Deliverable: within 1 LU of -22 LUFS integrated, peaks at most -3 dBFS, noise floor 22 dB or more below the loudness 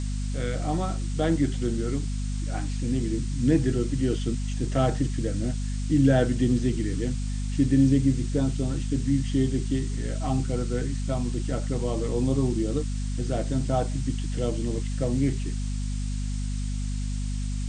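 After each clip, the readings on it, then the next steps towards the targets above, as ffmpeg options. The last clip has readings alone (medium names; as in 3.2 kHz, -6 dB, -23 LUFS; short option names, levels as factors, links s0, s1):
hum 50 Hz; highest harmonic 250 Hz; hum level -26 dBFS; noise floor -29 dBFS; noise floor target -49 dBFS; loudness -27.0 LUFS; peak level -9.0 dBFS; loudness target -22.0 LUFS
-> -af "bandreject=f=50:t=h:w=6,bandreject=f=100:t=h:w=6,bandreject=f=150:t=h:w=6,bandreject=f=200:t=h:w=6,bandreject=f=250:t=h:w=6"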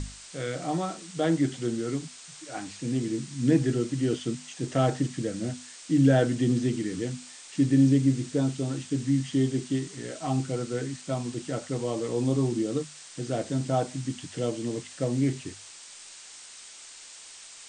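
hum not found; noise floor -47 dBFS; noise floor target -50 dBFS
-> -af "afftdn=nr=6:nf=-47"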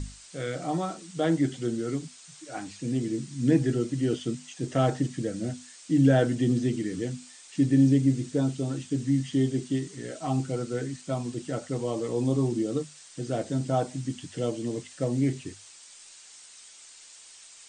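noise floor -50 dBFS; loudness -28.0 LUFS; peak level -9.5 dBFS; loudness target -22.0 LUFS
-> -af "volume=2"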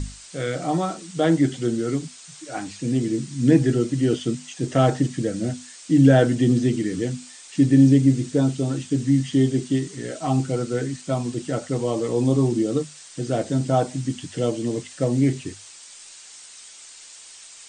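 loudness -22.0 LUFS; peak level -3.5 dBFS; noise floor -44 dBFS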